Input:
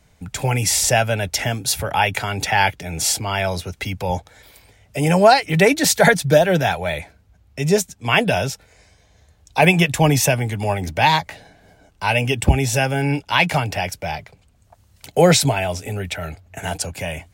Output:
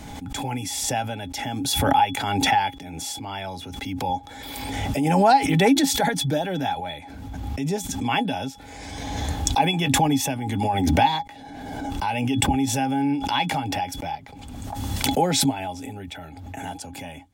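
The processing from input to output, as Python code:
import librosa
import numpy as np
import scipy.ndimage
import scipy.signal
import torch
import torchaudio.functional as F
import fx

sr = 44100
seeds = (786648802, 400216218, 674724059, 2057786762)

y = fx.small_body(x, sr, hz=(270.0, 820.0, 3400.0), ring_ms=85, db=18)
y = fx.pre_swell(y, sr, db_per_s=28.0)
y = y * 10.0 ** (-13.5 / 20.0)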